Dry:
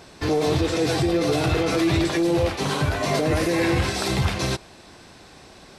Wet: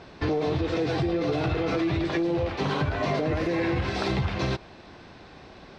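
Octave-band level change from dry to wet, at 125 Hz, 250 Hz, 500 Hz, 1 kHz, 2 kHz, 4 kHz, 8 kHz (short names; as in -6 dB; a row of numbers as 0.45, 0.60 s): -4.0, -4.0, -4.5, -4.0, -5.0, -8.0, -17.0 dB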